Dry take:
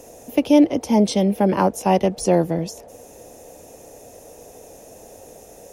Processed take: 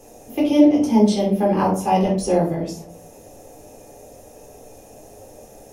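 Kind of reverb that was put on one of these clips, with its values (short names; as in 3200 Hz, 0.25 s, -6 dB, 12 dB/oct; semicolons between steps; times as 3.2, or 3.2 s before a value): shoebox room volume 310 m³, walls furnished, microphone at 3.9 m; gain -8 dB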